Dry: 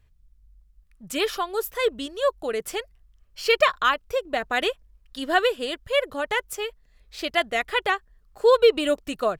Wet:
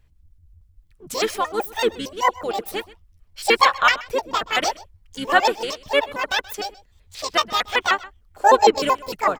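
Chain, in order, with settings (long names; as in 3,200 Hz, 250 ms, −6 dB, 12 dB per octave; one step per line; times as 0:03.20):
pitch shifter gated in a rhythm +10 semitones, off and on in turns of 76 ms
dynamic equaliser 1,400 Hz, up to +4 dB, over −30 dBFS, Q 1
pitch-shifted copies added −12 semitones −15 dB, −5 semitones −11 dB
single-tap delay 128 ms −20 dB
level +1.5 dB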